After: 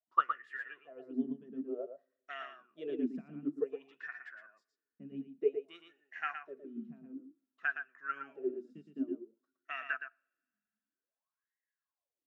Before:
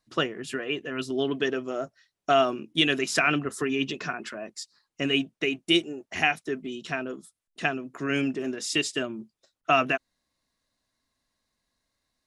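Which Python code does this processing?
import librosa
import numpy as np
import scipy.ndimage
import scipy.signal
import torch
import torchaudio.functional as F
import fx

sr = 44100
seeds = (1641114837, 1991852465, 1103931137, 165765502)

p1 = fx.wah_lfo(x, sr, hz=0.54, low_hz=200.0, high_hz=1900.0, q=17.0)
p2 = p1 + fx.echo_single(p1, sr, ms=115, db=-5.5, dry=0)
p3 = fx.rev_double_slope(p2, sr, seeds[0], early_s=0.47, late_s=2.6, knee_db=-26, drr_db=19.0)
p4 = fx.upward_expand(p3, sr, threshold_db=-53.0, expansion=1.5)
y = p4 * librosa.db_to_amplitude(9.0)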